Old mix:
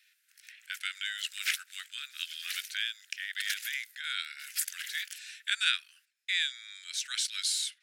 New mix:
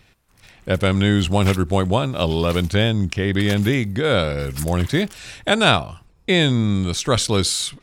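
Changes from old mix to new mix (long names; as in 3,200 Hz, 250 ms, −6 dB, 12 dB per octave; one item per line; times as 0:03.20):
speech +8.5 dB
master: remove Butterworth high-pass 1,500 Hz 72 dB per octave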